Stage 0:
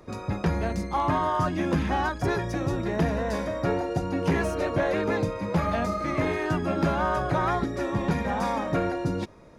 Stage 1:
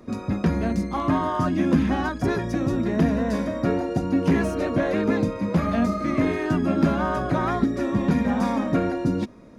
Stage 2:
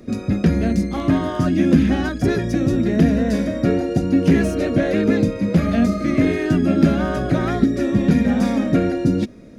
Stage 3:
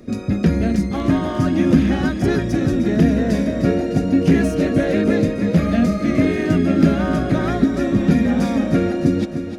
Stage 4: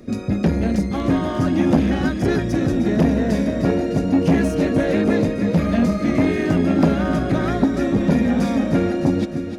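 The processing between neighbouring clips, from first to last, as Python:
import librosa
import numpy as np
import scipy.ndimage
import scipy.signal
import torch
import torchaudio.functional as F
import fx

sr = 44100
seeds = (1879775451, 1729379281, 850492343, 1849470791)

y1 = fx.peak_eq(x, sr, hz=240.0, db=12.5, octaves=0.6)
y1 = fx.notch(y1, sr, hz=860.0, q=12.0)
y2 = fx.peak_eq(y1, sr, hz=1000.0, db=-14.0, octaves=0.74)
y2 = y2 * 10.0 ** (6.0 / 20.0)
y3 = fx.echo_feedback(y2, sr, ms=305, feedback_pct=59, wet_db=-10.0)
y4 = fx.transformer_sat(y3, sr, knee_hz=440.0)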